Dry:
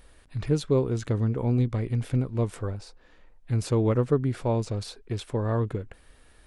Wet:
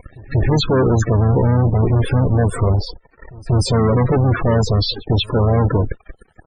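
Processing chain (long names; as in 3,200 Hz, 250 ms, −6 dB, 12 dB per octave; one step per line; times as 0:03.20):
fuzz pedal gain 40 dB, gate −49 dBFS
pitch-shifted copies added −5 semitones −9 dB
backwards echo 188 ms −22.5 dB
spectral peaks only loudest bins 32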